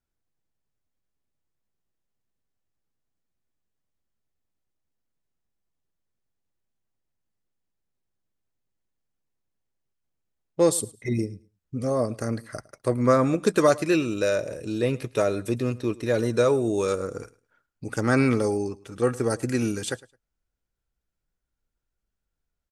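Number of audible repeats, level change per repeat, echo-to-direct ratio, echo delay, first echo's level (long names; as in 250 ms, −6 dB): 1, repeats not evenly spaced, −21.5 dB, 107 ms, −21.5 dB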